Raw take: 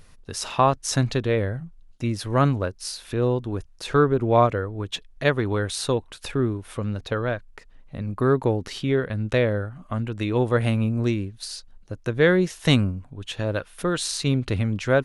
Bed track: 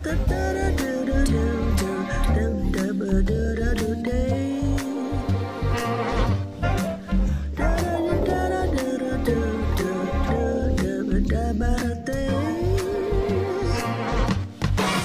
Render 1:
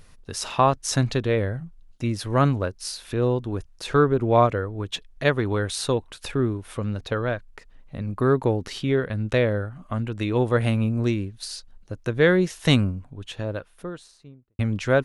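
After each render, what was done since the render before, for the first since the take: 12.82–14.59 studio fade out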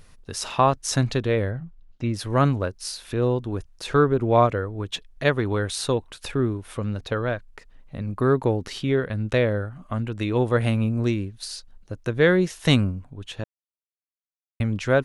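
1.51–2.14 air absorption 130 m; 13.44–14.6 mute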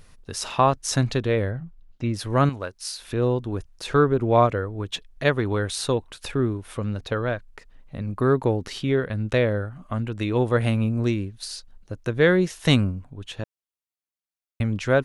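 2.49–3 low shelf 500 Hz -10.5 dB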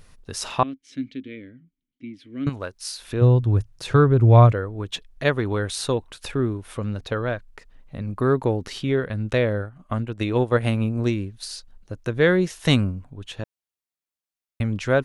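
0.63–2.47 vowel filter i; 3.21–4.52 bell 110 Hz +14.5 dB; 9.59–11.1 transient shaper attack +3 dB, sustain -8 dB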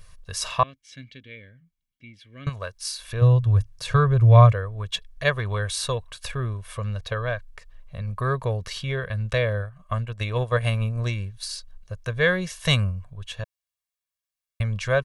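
bell 330 Hz -13 dB 1.3 oct; comb 1.8 ms, depth 62%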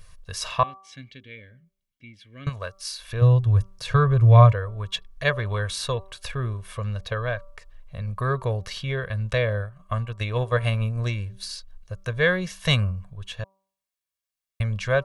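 de-hum 193.1 Hz, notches 7; dynamic EQ 8700 Hz, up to -5 dB, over -47 dBFS, Q 1.1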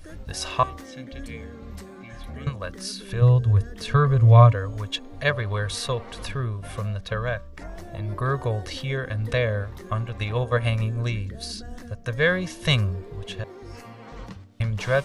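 add bed track -17 dB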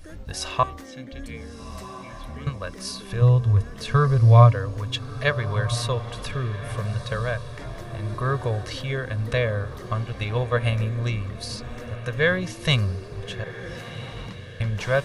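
diffused feedback echo 1.354 s, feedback 54%, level -14 dB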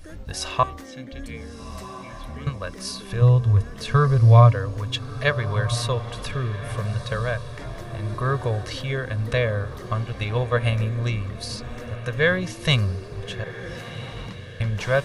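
gain +1 dB; limiter -3 dBFS, peak gain reduction 2 dB

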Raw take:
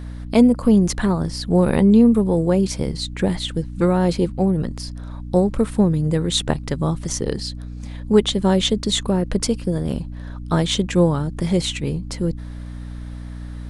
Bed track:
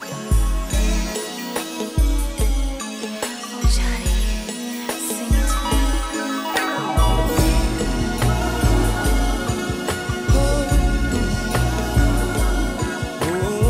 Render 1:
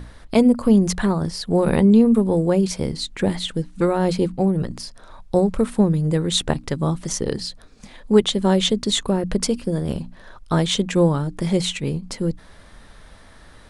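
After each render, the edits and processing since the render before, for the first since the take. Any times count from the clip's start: notches 60/120/180/240/300 Hz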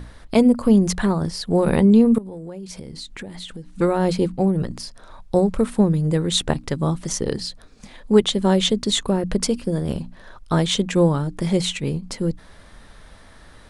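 2.18–3.76 compressor 8:1, threshold -31 dBFS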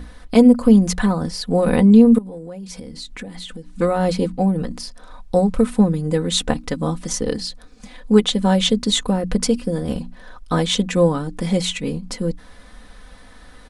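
comb 4 ms, depth 66%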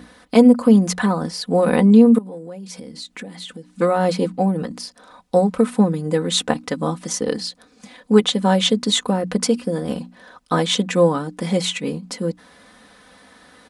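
HPF 160 Hz 12 dB/oct; dynamic EQ 1100 Hz, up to +3 dB, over -33 dBFS, Q 0.71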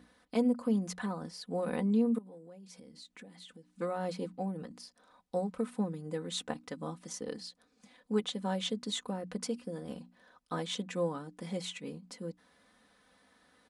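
gain -17.5 dB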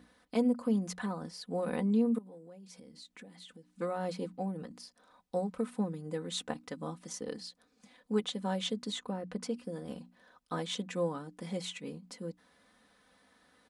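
8.92–9.59 high shelf 5000 Hz -7.5 dB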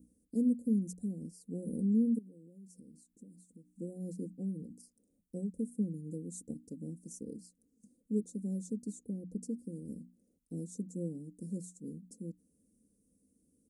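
inverse Chebyshev band-stop 950–3200 Hz, stop band 60 dB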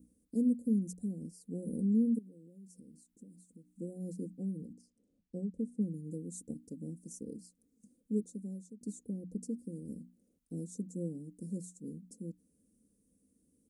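4.73–5.81 air absorption 86 m; 8.14–8.81 fade out, to -18.5 dB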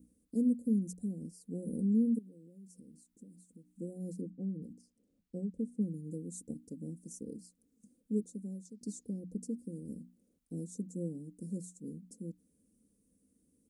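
4.21–4.62 LPF 1300 Hz 6 dB/oct; 8.65–9.2 bell 5000 Hz +10.5 dB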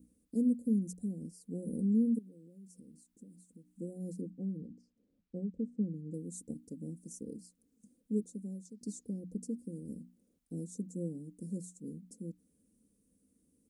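4.61–6.14 air absorption 130 m

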